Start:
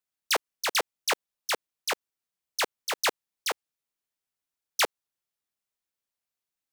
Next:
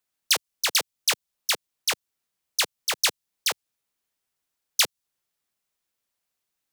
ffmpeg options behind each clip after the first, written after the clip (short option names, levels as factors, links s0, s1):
-filter_complex "[0:a]acrossover=split=170|3000[s0][s1][s2];[s1]acompressor=threshold=0.0158:ratio=6[s3];[s0][s3][s2]amix=inputs=3:normalize=0,volume=2.24"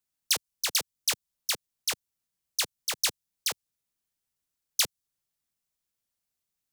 -af "bass=f=250:g=9,treble=f=4000:g=5,volume=0.422"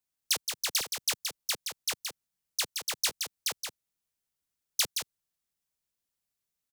-af "aecho=1:1:172:0.501,volume=0.75"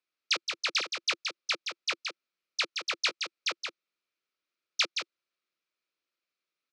-af "highpass=290,equalizer=f=340:t=q:w=4:g=8,equalizer=f=540:t=q:w=4:g=5,equalizer=f=830:t=q:w=4:g=-7,equalizer=f=1300:t=q:w=4:g=9,equalizer=f=2400:t=q:w=4:g=9,equalizer=f=4100:t=q:w=4:g=3,lowpass=f=5300:w=0.5412,lowpass=f=5300:w=1.3066"